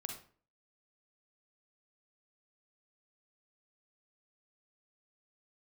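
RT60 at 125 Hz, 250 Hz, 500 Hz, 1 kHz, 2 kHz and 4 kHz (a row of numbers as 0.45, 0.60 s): 0.50, 0.50, 0.45, 0.40, 0.40, 0.30 s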